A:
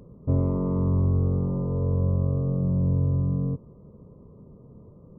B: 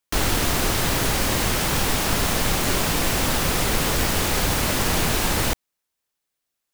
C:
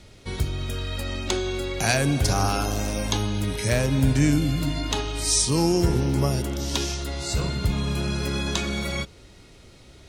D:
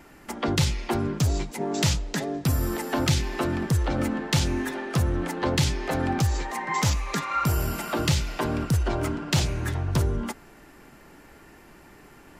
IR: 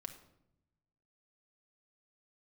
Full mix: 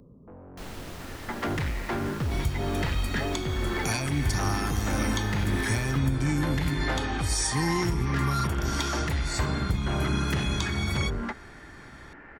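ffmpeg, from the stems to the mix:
-filter_complex "[0:a]equalizer=frequency=260:width=6.6:gain=7,acrossover=split=500|1200[link_01][link_02][link_03];[link_01]acompressor=threshold=-33dB:ratio=4[link_04];[link_02]acompressor=threshold=-58dB:ratio=4[link_05];[link_03]acompressor=threshold=-55dB:ratio=4[link_06];[link_04][link_05][link_06]amix=inputs=3:normalize=0,aeval=exprs='0.0596*sin(PI/2*2.82*val(0)/0.0596)':channel_layout=same,volume=-18dB[link_07];[1:a]highshelf=frequency=5300:gain=-7.5,adelay=450,volume=-18.5dB[link_08];[2:a]aecho=1:1:0.9:0.72,adelay=2050,volume=-5dB[link_09];[3:a]lowpass=frequency=1800:width_type=q:width=2.6,asoftclip=type=tanh:threshold=-25.5dB,adelay=1000,volume=0dB[link_10];[link_07][link_08][link_09][link_10]amix=inputs=4:normalize=0,alimiter=limit=-16dB:level=0:latency=1:release=448"

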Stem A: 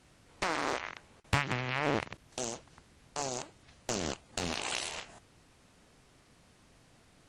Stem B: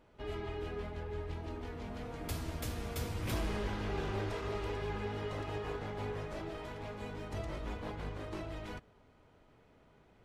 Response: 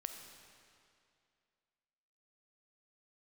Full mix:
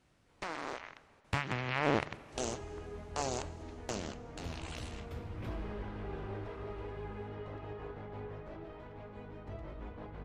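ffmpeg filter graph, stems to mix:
-filter_complex "[0:a]volume=-1dB,afade=type=in:start_time=1.18:duration=0.72:silence=0.375837,afade=type=out:start_time=3.62:duration=0.55:silence=0.266073,asplit=2[link_01][link_02];[link_02]volume=-8dB[link_03];[1:a]equalizer=frequency=11000:width_type=o:width=2.3:gain=-14.5,adelay=2150,volume=-4.5dB[link_04];[2:a]atrim=start_sample=2205[link_05];[link_03][link_05]afir=irnorm=-1:irlink=0[link_06];[link_01][link_04][link_06]amix=inputs=3:normalize=0,highshelf=frequency=4900:gain=-7"

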